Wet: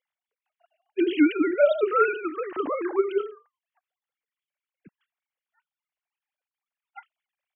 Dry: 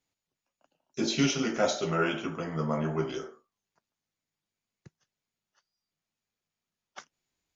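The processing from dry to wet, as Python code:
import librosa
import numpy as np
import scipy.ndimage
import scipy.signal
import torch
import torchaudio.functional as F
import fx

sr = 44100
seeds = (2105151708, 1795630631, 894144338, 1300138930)

y = fx.sine_speech(x, sr)
y = y * librosa.db_to_amplitude(6.0)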